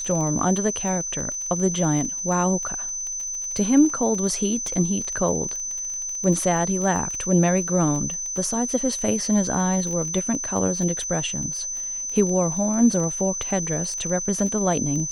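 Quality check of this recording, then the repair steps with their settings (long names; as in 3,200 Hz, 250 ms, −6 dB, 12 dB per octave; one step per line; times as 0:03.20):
surface crackle 23 per second −28 dBFS
whistle 6,100 Hz −27 dBFS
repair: click removal
notch filter 6,100 Hz, Q 30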